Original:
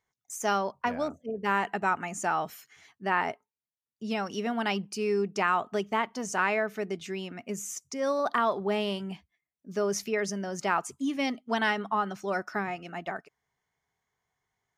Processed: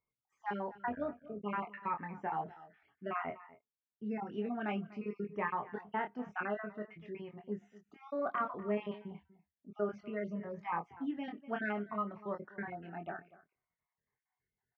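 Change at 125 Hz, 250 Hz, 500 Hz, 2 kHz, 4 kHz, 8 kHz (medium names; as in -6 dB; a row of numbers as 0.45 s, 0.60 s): -6.5 dB, -7.0 dB, -9.5 dB, -12.0 dB, -20.5 dB, under -40 dB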